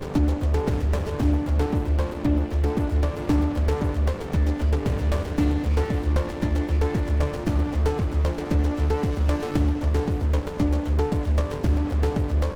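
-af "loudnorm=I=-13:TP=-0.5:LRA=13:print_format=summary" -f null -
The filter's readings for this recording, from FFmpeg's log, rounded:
Input Integrated:    -24.3 LUFS
Input True Peak:     -10.6 dBTP
Input LRA:             0.3 LU
Input Threshold:     -34.3 LUFS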